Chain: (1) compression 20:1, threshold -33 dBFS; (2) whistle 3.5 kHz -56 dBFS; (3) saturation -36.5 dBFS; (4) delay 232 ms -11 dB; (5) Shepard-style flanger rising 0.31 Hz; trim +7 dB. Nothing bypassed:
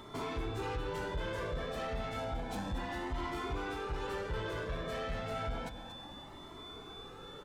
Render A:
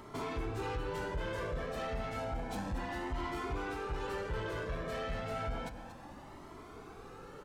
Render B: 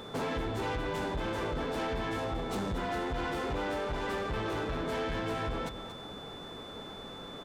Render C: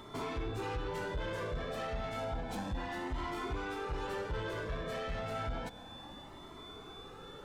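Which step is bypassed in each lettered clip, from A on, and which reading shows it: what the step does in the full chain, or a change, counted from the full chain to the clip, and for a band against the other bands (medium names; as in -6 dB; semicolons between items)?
2, 4 kHz band -4.0 dB; 5, 250 Hz band +2.0 dB; 4, momentary loudness spread change +1 LU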